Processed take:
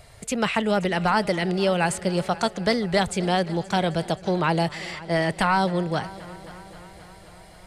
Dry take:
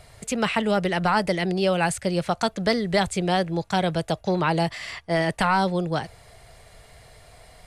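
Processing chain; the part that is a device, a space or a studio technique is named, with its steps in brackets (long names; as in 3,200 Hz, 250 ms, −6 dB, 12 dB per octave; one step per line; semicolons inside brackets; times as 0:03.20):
multi-head tape echo (echo machine with several playback heads 264 ms, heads first and second, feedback 62%, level −21.5 dB; tape wow and flutter 17 cents)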